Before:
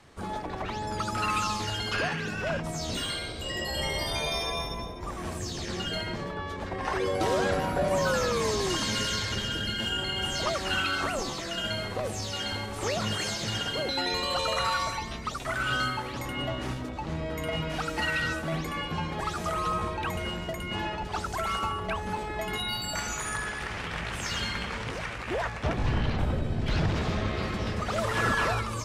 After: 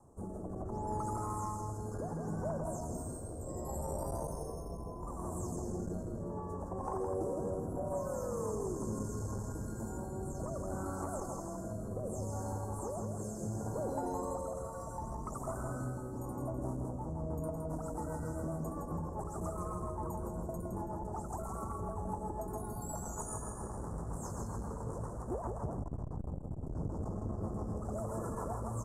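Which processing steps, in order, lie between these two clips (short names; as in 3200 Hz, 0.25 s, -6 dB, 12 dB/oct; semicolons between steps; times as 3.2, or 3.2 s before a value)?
elliptic band-stop 1000–7600 Hz, stop band 70 dB; compressor 4:1, threshold -32 dBFS, peak gain reduction 8.5 dB; rotary speaker horn 0.7 Hz, later 7.5 Hz, at 16.15; feedback echo 0.164 s, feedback 37%, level -5 dB; core saturation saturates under 190 Hz; gain -1 dB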